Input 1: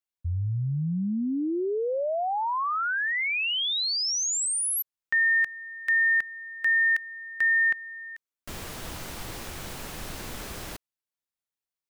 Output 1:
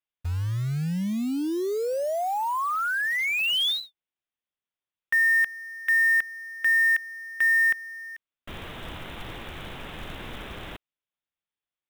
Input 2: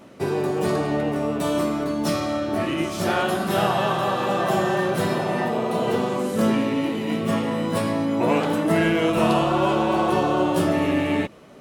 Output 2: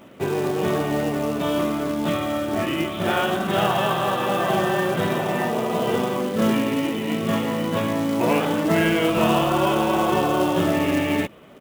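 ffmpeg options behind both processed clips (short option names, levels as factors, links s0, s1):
-af "aemphasis=mode=production:type=50kf,aresample=8000,aresample=44100,acrusher=bits=4:mode=log:mix=0:aa=0.000001"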